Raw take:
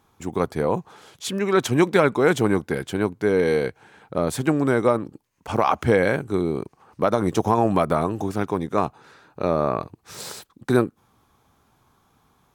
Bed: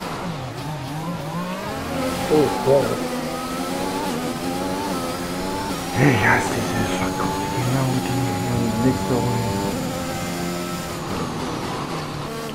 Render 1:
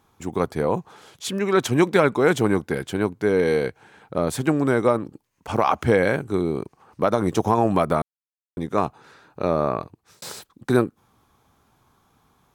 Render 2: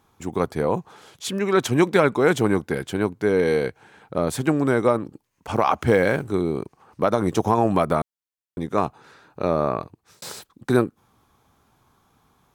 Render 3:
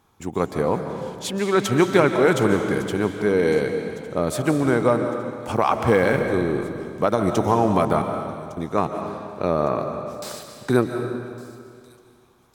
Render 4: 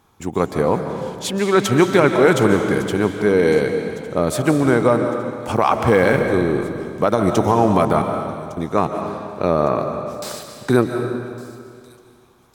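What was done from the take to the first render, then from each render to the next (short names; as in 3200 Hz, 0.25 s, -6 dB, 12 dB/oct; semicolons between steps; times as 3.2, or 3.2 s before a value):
8.02–8.57 mute; 9.55–10.22 fade out equal-power
5.87–6.31 G.711 law mismatch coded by mu
thin delay 1.157 s, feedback 56%, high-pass 4100 Hz, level -16.5 dB; digital reverb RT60 2.2 s, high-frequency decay 0.85×, pre-delay 0.105 s, DRR 5.5 dB
gain +4 dB; limiter -3 dBFS, peak gain reduction 3 dB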